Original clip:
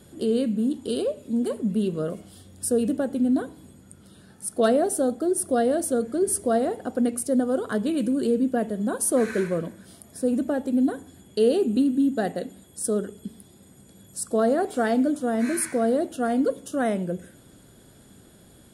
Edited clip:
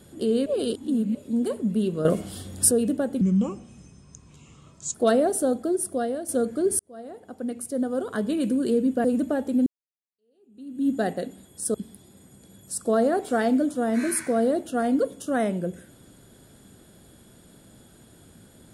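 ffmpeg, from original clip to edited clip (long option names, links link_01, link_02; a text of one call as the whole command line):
ffmpeg -i in.wav -filter_complex "[0:a]asplit=12[link_01][link_02][link_03][link_04][link_05][link_06][link_07][link_08][link_09][link_10][link_11][link_12];[link_01]atrim=end=0.462[link_13];[link_02]atrim=start=0.458:end=1.152,asetpts=PTS-STARTPTS,areverse[link_14];[link_03]atrim=start=1.148:end=2.052[link_15];[link_04]atrim=start=2.048:end=2.712,asetpts=PTS-STARTPTS,volume=10dB[link_16];[link_05]atrim=start=2.708:end=3.214[link_17];[link_06]atrim=start=3.21:end=4.51,asetpts=PTS-STARTPTS,asetrate=33075,aresample=44100[link_18];[link_07]atrim=start=4.506:end=5.85,asetpts=PTS-STARTPTS,afade=type=out:start_time=0.664:duration=0.68:silence=0.298538[link_19];[link_08]atrim=start=5.85:end=6.36,asetpts=PTS-STARTPTS,afade=type=in:duration=0.004:curve=hsin:silence=0.298538,afade=type=out:start_time=0.506:duration=0.004:curve=hsin[link_20];[link_09]atrim=start=6.36:end=8.612,asetpts=PTS-STARTPTS,afade=type=in:duration=1.65[link_21];[link_10]atrim=start=10.228:end=10.85,asetpts=PTS-STARTPTS,afade=type=out:start_time=0.618:duration=0.004:curve=hsin[link_22];[link_11]atrim=start=10.85:end=12.932,asetpts=PTS-STARTPTS,afade=type=in:duration=1.22:curve=exp[link_23];[link_12]atrim=start=13.198[link_24];[link_13][link_14]acrossfade=duration=0.004:curve1=hsin:curve2=hsin[link_25];[link_25][link_15]acrossfade=duration=0.004:curve1=hsin:curve2=hsin[link_26];[link_26][link_16]acrossfade=duration=0.004:curve1=hsin:curve2=hsin[link_27];[link_27][link_17]acrossfade=duration=0.004:curve1=hsin:curve2=hsin[link_28];[link_28][link_18]acrossfade=duration=0.004:curve1=hsin:curve2=hsin[link_29];[link_19][link_20][link_21]concat=n=3:v=0:a=1[link_30];[link_29][link_30]acrossfade=duration=0.004:curve1=hsin:curve2=hsin[link_31];[link_22][link_23]concat=n=2:v=0:a=1[link_32];[link_31][link_32]acrossfade=duration=0.004:curve1=hsin:curve2=hsin[link_33];[link_33][link_24]acrossfade=duration=0.004:curve1=hsin:curve2=hsin" out.wav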